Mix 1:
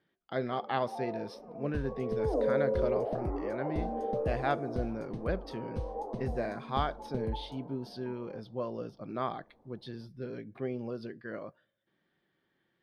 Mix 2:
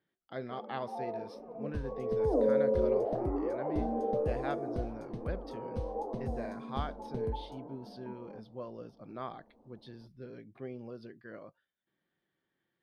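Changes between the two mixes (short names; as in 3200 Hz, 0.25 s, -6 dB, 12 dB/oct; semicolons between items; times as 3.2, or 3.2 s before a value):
speech -5.0 dB; first sound: add low shelf 360 Hz +8 dB; reverb: off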